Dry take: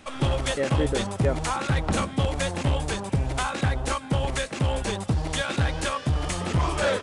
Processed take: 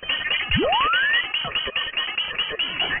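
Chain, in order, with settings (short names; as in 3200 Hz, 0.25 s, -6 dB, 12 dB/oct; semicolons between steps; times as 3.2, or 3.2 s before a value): painted sound fall, 0.95–2.83, 480–1600 Hz -21 dBFS; speed mistake 33 rpm record played at 78 rpm; inverted band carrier 3100 Hz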